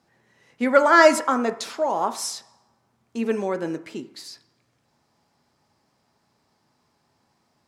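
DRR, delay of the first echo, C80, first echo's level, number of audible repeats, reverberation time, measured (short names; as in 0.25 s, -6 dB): 9.0 dB, none, 18.5 dB, none, none, 0.50 s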